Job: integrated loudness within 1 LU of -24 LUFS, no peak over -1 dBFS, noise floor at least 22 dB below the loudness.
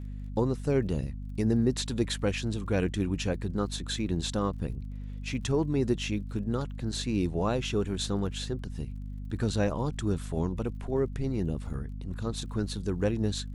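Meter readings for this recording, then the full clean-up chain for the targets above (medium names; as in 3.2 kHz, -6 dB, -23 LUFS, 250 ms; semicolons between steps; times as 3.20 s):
tick rate 37 per s; hum 50 Hz; highest harmonic 250 Hz; hum level -35 dBFS; loudness -31.0 LUFS; peak level -13.5 dBFS; loudness target -24.0 LUFS
-> de-click; hum notches 50/100/150/200/250 Hz; trim +7 dB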